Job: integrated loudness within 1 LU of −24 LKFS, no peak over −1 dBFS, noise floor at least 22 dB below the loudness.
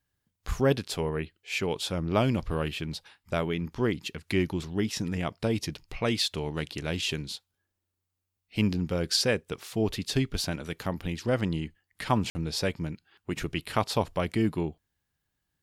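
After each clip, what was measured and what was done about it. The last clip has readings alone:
number of dropouts 1; longest dropout 50 ms; integrated loudness −30.0 LKFS; sample peak −9.5 dBFS; target loudness −24.0 LKFS
→ repair the gap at 0:12.30, 50 ms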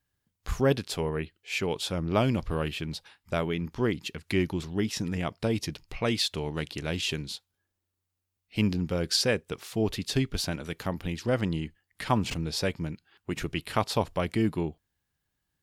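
number of dropouts 0; integrated loudness −30.0 LKFS; sample peak −9.5 dBFS; target loudness −24.0 LKFS
→ level +6 dB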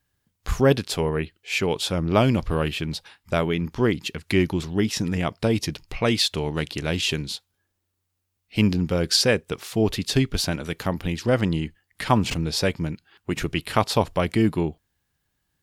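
integrated loudness −24.0 LKFS; sample peak −3.5 dBFS; background noise floor −77 dBFS

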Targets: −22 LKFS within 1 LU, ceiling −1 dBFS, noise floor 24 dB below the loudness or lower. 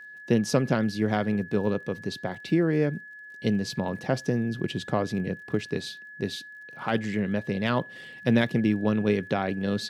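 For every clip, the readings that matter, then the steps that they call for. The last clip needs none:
crackle rate 38 per second; interfering tone 1,700 Hz; level of the tone −42 dBFS; integrated loudness −27.5 LKFS; sample peak −9.0 dBFS; target loudness −22.0 LKFS
→ click removal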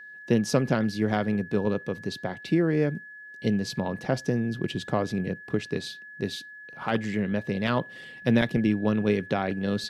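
crackle rate 0 per second; interfering tone 1,700 Hz; level of the tone −42 dBFS
→ notch filter 1,700 Hz, Q 30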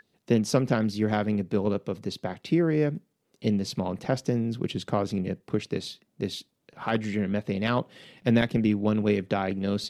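interfering tone none found; integrated loudness −27.5 LKFS; sample peak −8.5 dBFS; target loudness −22.0 LKFS
→ level +5.5 dB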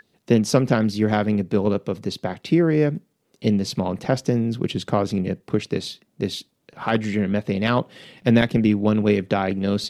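integrated loudness −22.0 LKFS; sample peak −3.0 dBFS; background noise floor −69 dBFS

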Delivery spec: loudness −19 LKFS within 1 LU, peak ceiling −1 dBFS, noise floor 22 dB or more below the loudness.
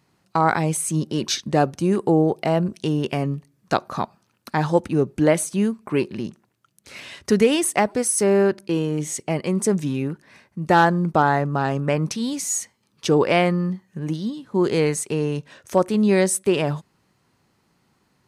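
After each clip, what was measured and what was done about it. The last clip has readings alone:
integrated loudness −21.5 LKFS; sample peak −4.5 dBFS; target loudness −19.0 LKFS
→ level +2.5 dB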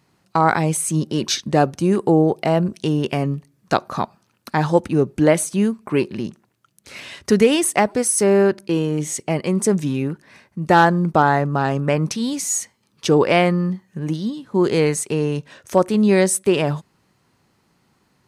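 integrated loudness −19.0 LKFS; sample peak −2.0 dBFS; background noise floor −64 dBFS

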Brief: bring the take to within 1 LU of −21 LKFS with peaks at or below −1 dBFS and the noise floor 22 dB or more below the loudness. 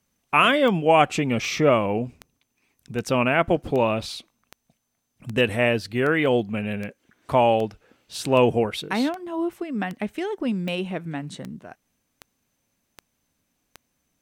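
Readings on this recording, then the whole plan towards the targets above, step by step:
number of clicks 18; integrated loudness −23.0 LKFS; sample peak −4.5 dBFS; target loudness −21.0 LKFS
→ click removal
level +2 dB

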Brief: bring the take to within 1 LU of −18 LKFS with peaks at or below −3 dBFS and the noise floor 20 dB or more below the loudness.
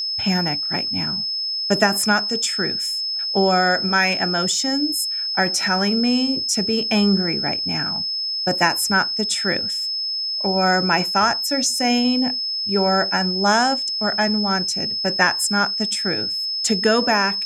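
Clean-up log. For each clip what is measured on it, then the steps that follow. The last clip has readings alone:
interfering tone 5,200 Hz; level of the tone −22 dBFS; integrated loudness −19.0 LKFS; sample peak −1.5 dBFS; target loudness −18.0 LKFS
→ notch filter 5,200 Hz, Q 30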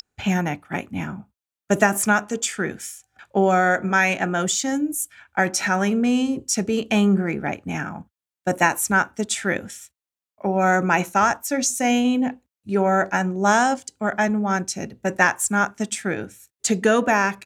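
interfering tone none found; integrated loudness −21.5 LKFS; sample peak −2.0 dBFS; target loudness −18.0 LKFS
→ level +3.5 dB
brickwall limiter −3 dBFS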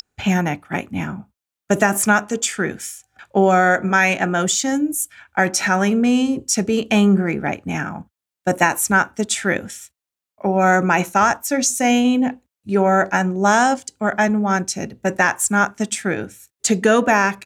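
integrated loudness −18.5 LKFS; sample peak −3.0 dBFS; background noise floor −87 dBFS

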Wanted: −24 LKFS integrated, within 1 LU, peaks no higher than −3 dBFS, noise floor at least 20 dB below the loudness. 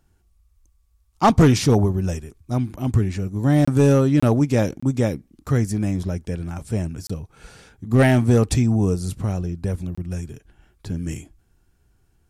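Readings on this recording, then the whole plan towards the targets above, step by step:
share of clipped samples 1.0%; peaks flattened at −8.0 dBFS; number of dropouts 5; longest dropout 25 ms; integrated loudness −20.5 LKFS; sample peak −8.0 dBFS; target loudness −24.0 LKFS
→ clipped peaks rebuilt −8 dBFS
repair the gap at 0:03.65/0:04.20/0:04.80/0:07.07/0:09.95, 25 ms
level −3.5 dB

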